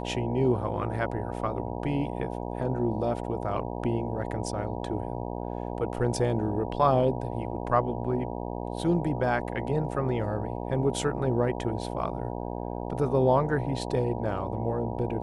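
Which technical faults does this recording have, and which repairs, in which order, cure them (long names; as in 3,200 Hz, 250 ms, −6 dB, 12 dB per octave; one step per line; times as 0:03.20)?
mains buzz 60 Hz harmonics 16 −34 dBFS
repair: hum removal 60 Hz, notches 16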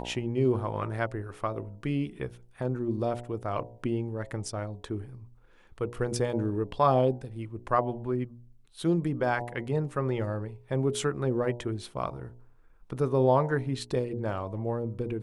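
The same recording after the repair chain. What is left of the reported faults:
none of them is left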